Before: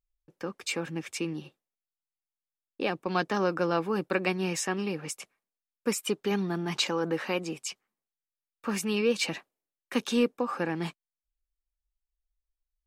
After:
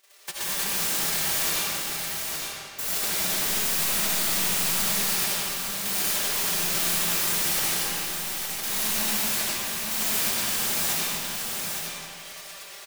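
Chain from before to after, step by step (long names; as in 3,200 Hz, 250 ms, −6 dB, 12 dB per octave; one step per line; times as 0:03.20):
spectral envelope flattened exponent 0.1
high-pass filter 88 Hz 6 dB per octave
comb filter 5.1 ms, depth 94%
automatic gain control gain up to 11 dB
wrap-around overflow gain 14.5 dB
notch filter 1,300 Hz
mid-hump overdrive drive 32 dB, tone 6,100 Hz, clips at −13 dBFS
wave folding −24.5 dBFS
single-tap delay 862 ms −5 dB
comb and all-pass reverb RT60 2.4 s, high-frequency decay 0.8×, pre-delay 40 ms, DRR −6.5 dB
level −1.5 dB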